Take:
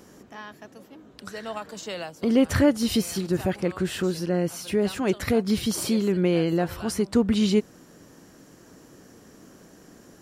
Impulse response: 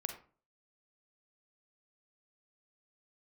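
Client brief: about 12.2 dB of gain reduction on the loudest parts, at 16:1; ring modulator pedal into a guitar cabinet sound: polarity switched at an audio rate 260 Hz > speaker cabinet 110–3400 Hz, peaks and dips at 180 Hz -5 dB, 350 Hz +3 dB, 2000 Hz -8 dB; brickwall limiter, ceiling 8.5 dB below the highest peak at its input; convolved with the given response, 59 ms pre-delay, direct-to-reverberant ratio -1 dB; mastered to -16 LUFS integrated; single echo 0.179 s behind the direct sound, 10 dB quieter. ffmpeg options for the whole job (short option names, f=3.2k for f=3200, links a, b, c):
-filter_complex "[0:a]acompressor=threshold=-26dB:ratio=16,alimiter=limit=-23.5dB:level=0:latency=1,aecho=1:1:179:0.316,asplit=2[a][b];[1:a]atrim=start_sample=2205,adelay=59[c];[b][c]afir=irnorm=-1:irlink=0,volume=1dB[d];[a][d]amix=inputs=2:normalize=0,aeval=exprs='val(0)*sgn(sin(2*PI*260*n/s))':c=same,highpass=110,equalizer=f=180:t=q:w=4:g=-5,equalizer=f=350:t=q:w=4:g=3,equalizer=f=2k:t=q:w=4:g=-8,lowpass=f=3.4k:w=0.5412,lowpass=f=3.4k:w=1.3066,volume=16dB"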